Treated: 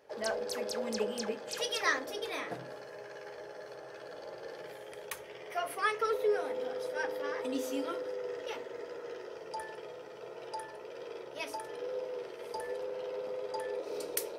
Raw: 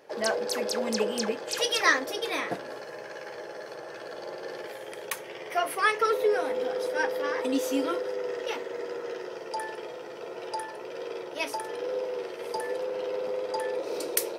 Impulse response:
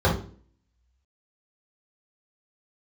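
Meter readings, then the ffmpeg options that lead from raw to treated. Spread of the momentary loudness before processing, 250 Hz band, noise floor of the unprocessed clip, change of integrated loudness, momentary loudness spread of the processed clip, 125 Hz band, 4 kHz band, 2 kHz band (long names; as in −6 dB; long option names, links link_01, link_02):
15 LU, −8.0 dB, −42 dBFS, −7.0 dB, 15 LU, can't be measured, −8.0 dB, −8.0 dB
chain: -filter_complex "[0:a]asplit=2[link_01][link_02];[link_02]lowshelf=frequency=84:gain=10[link_03];[1:a]atrim=start_sample=2205,asetrate=34398,aresample=44100[link_04];[link_03][link_04]afir=irnorm=-1:irlink=0,volume=-30dB[link_05];[link_01][link_05]amix=inputs=2:normalize=0,volume=-8dB"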